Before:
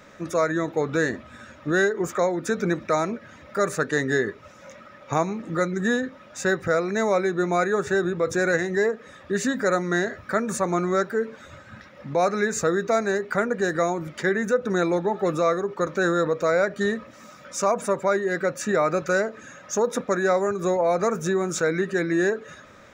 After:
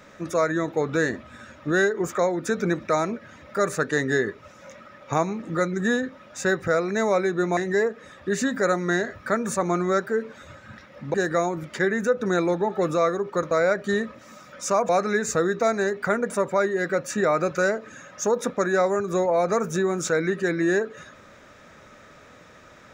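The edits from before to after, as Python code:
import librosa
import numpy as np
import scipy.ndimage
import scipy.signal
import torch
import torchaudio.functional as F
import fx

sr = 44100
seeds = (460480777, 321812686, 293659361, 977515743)

y = fx.edit(x, sr, fx.cut(start_s=7.57, length_s=1.03),
    fx.move(start_s=12.17, length_s=1.41, to_s=17.81),
    fx.cut(start_s=15.95, length_s=0.48), tone=tone)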